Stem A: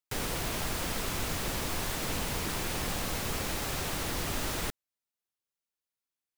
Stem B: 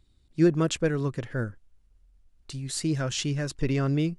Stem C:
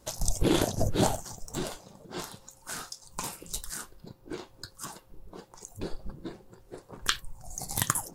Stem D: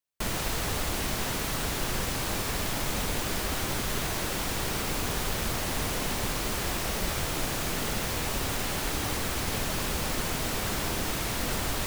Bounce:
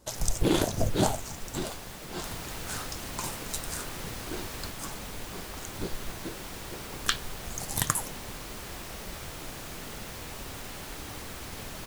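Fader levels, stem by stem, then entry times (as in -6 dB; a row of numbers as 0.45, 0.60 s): -9.5 dB, off, 0.0 dB, -10.0 dB; 0.00 s, off, 0.00 s, 2.05 s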